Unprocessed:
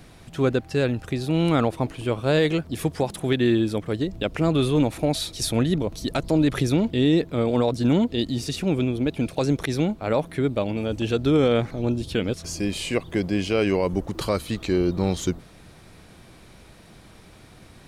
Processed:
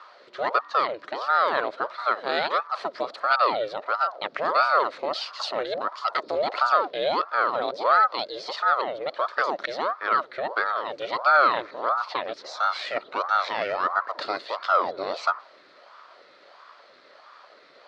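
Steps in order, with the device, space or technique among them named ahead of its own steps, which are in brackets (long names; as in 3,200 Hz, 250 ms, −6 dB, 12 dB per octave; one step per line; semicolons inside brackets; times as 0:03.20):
voice changer toy (ring modulator whose carrier an LFO sweeps 640 Hz, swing 70%, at 1.5 Hz; loudspeaker in its box 570–4,700 Hz, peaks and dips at 580 Hz +6 dB, 840 Hz −6 dB, 1,300 Hz +8 dB, 1,900 Hz +4 dB, 2,800 Hz −4 dB, 4,300 Hz +7 dB)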